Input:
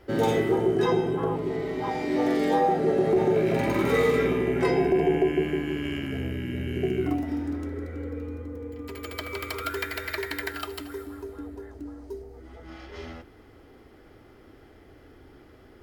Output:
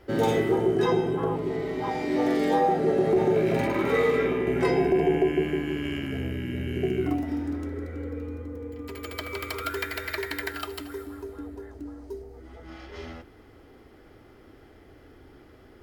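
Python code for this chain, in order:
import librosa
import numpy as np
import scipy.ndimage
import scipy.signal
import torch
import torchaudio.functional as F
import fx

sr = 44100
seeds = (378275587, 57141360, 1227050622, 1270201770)

y = fx.bass_treble(x, sr, bass_db=-5, treble_db=-7, at=(3.67, 4.47))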